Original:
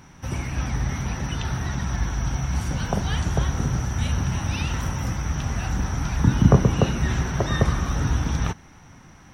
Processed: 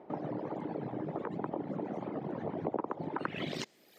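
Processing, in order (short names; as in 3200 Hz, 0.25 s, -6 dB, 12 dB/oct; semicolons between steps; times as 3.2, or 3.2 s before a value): reverb removal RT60 1.9 s; HPF 100 Hz 12 dB/oct; compressor 6:1, threshold -29 dBFS, peak gain reduction 17.5 dB; low-pass sweep 380 Hz -> 4800 Hz, 7.29–8.9; speed mistake 33 rpm record played at 78 rpm; gain -4.5 dB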